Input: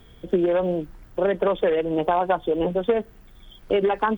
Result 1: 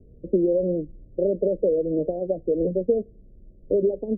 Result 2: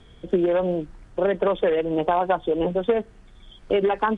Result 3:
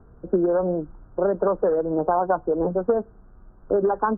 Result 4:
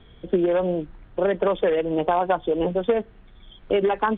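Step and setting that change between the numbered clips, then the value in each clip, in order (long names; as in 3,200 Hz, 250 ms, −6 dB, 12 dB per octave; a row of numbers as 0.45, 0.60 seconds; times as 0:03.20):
Butterworth low-pass, frequency: 600, 10,000, 1,500, 3,900 Hertz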